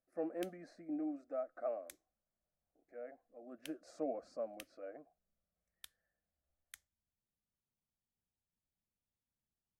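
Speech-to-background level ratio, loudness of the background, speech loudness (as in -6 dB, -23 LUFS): 14.0 dB, -58.5 LUFS, -44.5 LUFS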